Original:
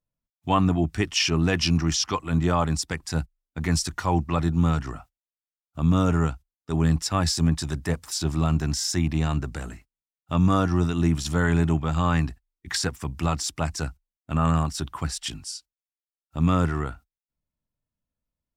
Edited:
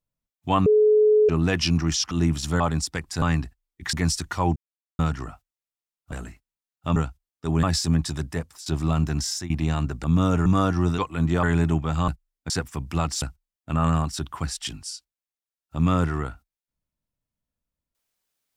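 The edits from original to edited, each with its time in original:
0.66–1.29 bleep 426 Hz -13.5 dBFS
2.11–2.56 swap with 10.93–11.42
3.18–3.6 swap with 12.07–12.78
4.23–4.66 mute
5.79–6.21 swap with 9.57–10.41
6.88–7.16 cut
7.75–8.19 fade out linear, to -15.5 dB
8.73–9.03 fade out equal-power, to -17.5 dB
13.5–13.83 cut

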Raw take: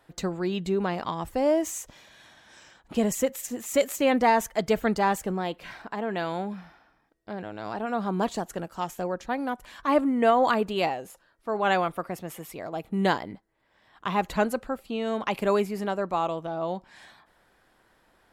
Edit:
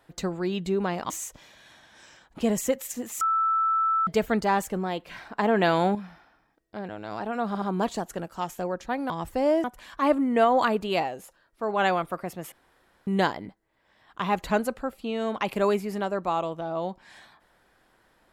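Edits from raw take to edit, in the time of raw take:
1.1–1.64 move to 9.5
3.75–4.61 bleep 1320 Hz -20.5 dBFS
5.93–6.49 gain +8 dB
8.02 stutter 0.07 s, 3 plays
12.38–12.93 room tone

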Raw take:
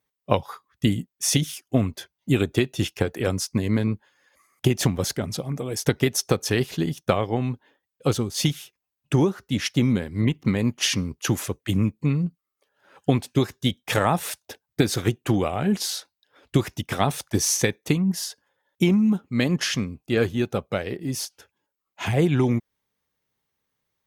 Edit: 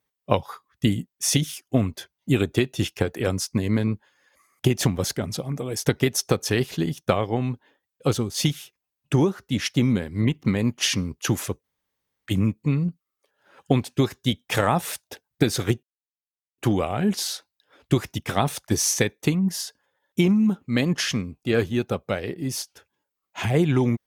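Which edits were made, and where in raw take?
11.64 insert room tone 0.62 s
15.21 insert silence 0.75 s

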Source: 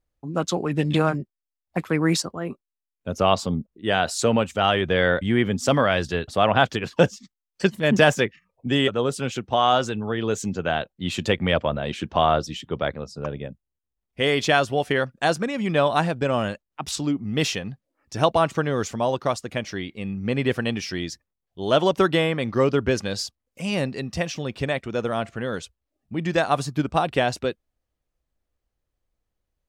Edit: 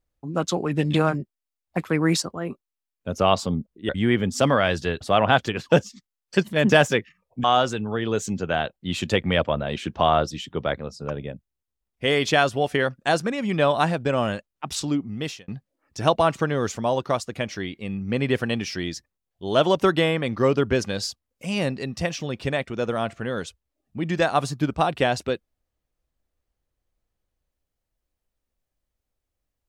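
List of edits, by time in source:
3.89–5.16 cut
8.71–9.6 cut
17.11–17.64 fade out

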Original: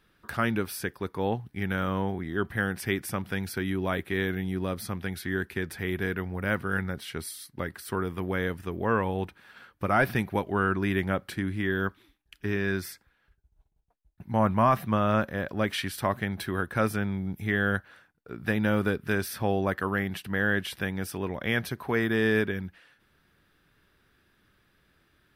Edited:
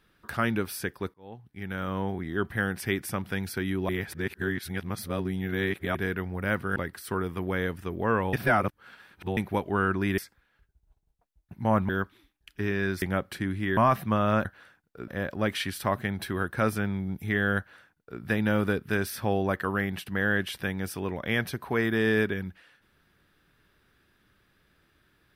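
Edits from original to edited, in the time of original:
1.14–2.19 fade in
3.89–5.95 reverse
6.76–7.57 cut
9.14–10.18 reverse
10.99–11.74 swap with 12.87–14.58
17.76–18.39 copy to 15.26

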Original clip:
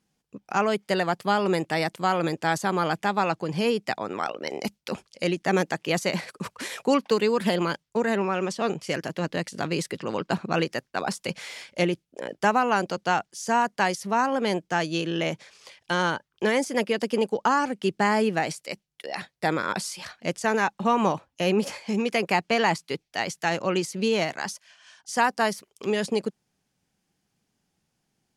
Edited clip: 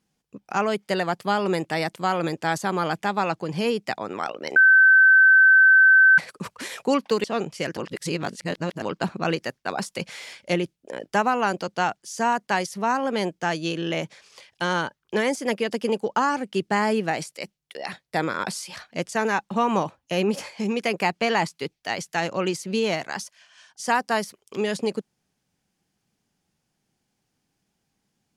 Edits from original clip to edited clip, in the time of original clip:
4.56–6.18 bleep 1540 Hz -10.5 dBFS
7.24–8.53 cut
9.06–10.11 reverse

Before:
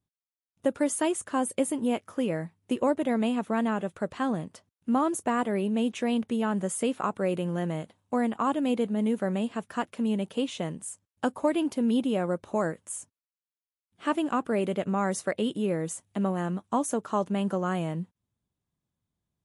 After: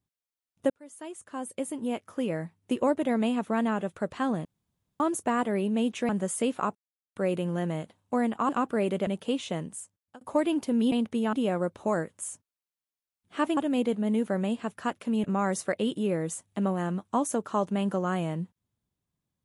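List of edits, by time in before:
0.7–2.57 fade in
4.45–5 room tone
6.09–6.5 move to 12.01
7.16 insert silence 0.41 s
8.49–10.16 swap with 14.25–14.83
10.76–11.3 fade out linear

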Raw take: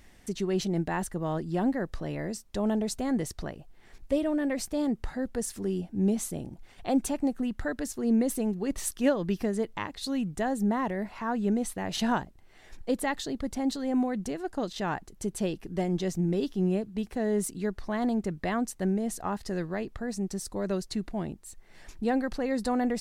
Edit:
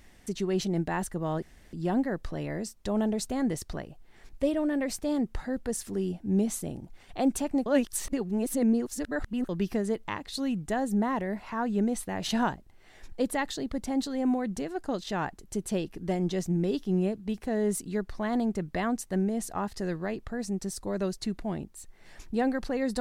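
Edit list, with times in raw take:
1.42 insert room tone 0.31 s
7.35–9.18 reverse

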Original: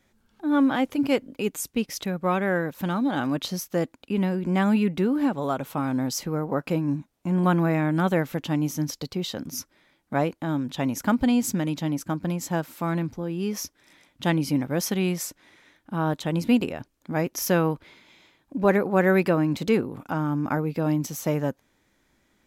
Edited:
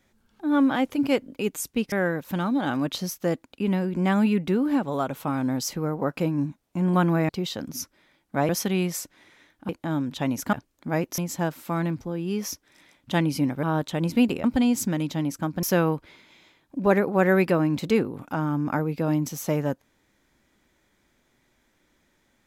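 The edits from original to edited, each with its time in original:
1.92–2.42 cut
7.79–9.07 cut
11.11–12.3 swap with 16.76–17.41
14.75–15.95 move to 10.27

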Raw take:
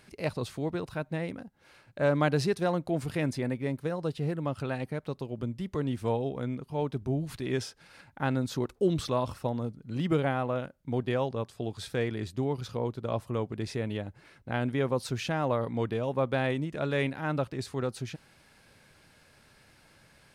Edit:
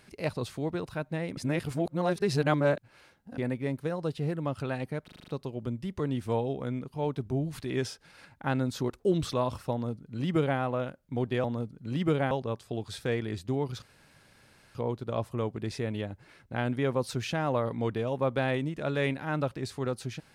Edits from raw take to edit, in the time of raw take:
1.37–3.38 reverse
5.04 stutter 0.04 s, 7 plays
9.48–10.35 copy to 11.2
12.71 insert room tone 0.93 s

